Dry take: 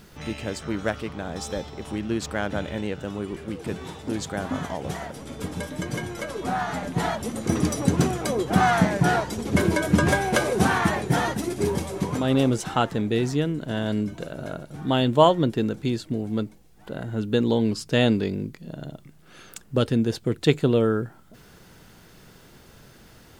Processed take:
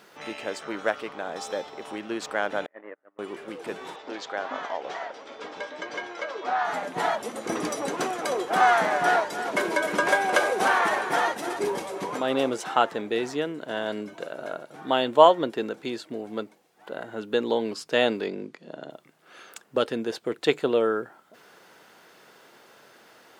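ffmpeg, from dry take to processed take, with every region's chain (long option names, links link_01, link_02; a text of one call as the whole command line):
ffmpeg -i in.wav -filter_complex "[0:a]asettb=1/sr,asplit=3[link_01][link_02][link_03];[link_01]atrim=end=2.664[link_04];[link_02]atrim=start=2.66:end=3.19,asetpts=PTS-STARTPTS,afade=type=in:duration=0.004:curve=qsin,afade=type=out:start_time=0.526:duration=0.004:curve=qsin,volume=22dB,asoftclip=hard,volume=-22dB,agate=range=-39dB:threshold=-27dB:ratio=16:release=100:detection=peak,highpass=200,equalizer=frequency=300:width_type=q:width=4:gain=7,equalizer=frequency=610:width_type=q:width=4:gain=5,equalizer=frequency=1200:width_type=q:width=4:gain=5,equalizer=frequency=1900:width_type=q:width=4:gain=10,lowpass=frequency=2100:width=0.5412,lowpass=frequency=2100:width=1.3066[link_05];[link_03]atrim=start=3.186[link_06];[link_04][link_05]acrossfade=duration=0.004:curve1=hsin:curve2=qsin[link_07];[link_07][link_06]acrossfade=duration=0.004:curve1=qsin:curve2=hsin,asettb=1/sr,asplit=3[link_08][link_09][link_10];[link_08]atrim=end=3.964[link_11];[link_09]atrim=start=3.96:end=6.65,asetpts=PTS-STARTPTS,afade=type=in:duration=0.004:curve=qsin,afade=type=out:start_time=2.686:duration=0.004:curve=qsin,lowpass=frequency=5700:width=0.5412,lowpass=frequency=5700:width=1.3066,equalizer=frequency=140:width_type=o:width=1.6:gain=-13.5[link_12];[link_10]atrim=start=6.646[link_13];[link_11][link_12]acrossfade=duration=0.004:curve1=hsin:curve2=qsin[link_14];[link_14][link_13]acrossfade=duration=0.004:curve1=qsin:curve2=hsin,asettb=1/sr,asplit=3[link_15][link_16][link_17];[link_15]atrim=end=7.874[link_18];[link_16]atrim=start=7.87:end=11.59,asetpts=PTS-STARTPTS,afade=type=in:duration=0.004:curve=qsin,afade=type=out:start_time=3.716:duration=0.004:curve=qsin,highpass=frequency=300:poles=1,aeval=exprs='val(0)+0.0141*(sin(2*PI*50*n/s)+sin(2*PI*2*50*n/s)/2+sin(2*PI*3*50*n/s)/3+sin(2*PI*4*50*n/s)/4+sin(2*PI*5*50*n/s)/5)':channel_layout=same,aecho=1:1:308:0.316,atrim=end_sample=164052[link_19];[link_17]atrim=start=11.586[link_20];[link_18][link_19]acrossfade=duration=0.004:curve1=hsin:curve2=qsin[link_21];[link_21][link_20]acrossfade=duration=0.004:curve1=qsin:curve2=hsin,asettb=1/sr,asplit=3[link_22][link_23][link_24];[link_22]atrim=end=18.274[link_25];[link_23]atrim=start=18.27:end=18.9,asetpts=PTS-STARTPTS,afade=type=in:duration=0.004:curve=qsin,afade=type=out:start_time=0.626:duration=0.004:curve=qsin,highpass=190,lowpass=7200,lowshelf=frequency=270:gain=7.5[link_26];[link_24]atrim=start=18.896[link_27];[link_25][link_26]acrossfade=duration=0.004:curve1=hsin:curve2=qsin[link_28];[link_28][link_27]acrossfade=duration=0.004:curve1=qsin:curve2=hsin,highpass=500,highshelf=frequency=3500:gain=-9.5,volume=3.5dB" out.wav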